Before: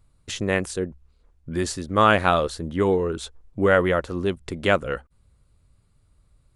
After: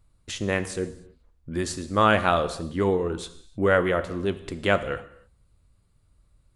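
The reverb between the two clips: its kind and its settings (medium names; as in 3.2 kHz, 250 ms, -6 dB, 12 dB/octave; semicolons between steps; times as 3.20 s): gated-style reverb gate 330 ms falling, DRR 10.5 dB; trim -2.5 dB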